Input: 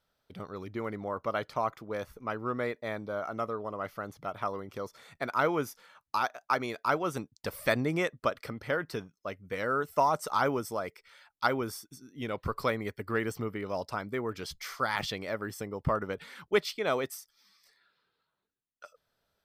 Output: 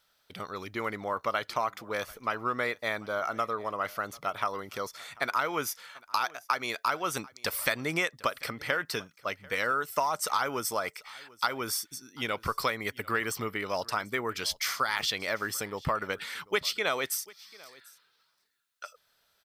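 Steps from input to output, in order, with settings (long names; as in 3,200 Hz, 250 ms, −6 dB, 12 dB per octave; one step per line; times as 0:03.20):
tilt shelving filter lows −7.5 dB, about 840 Hz
downward compressor 6 to 1, threshold −29 dBFS, peak gain reduction 10.5 dB
single-tap delay 742 ms −23 dB
level +4.5 dB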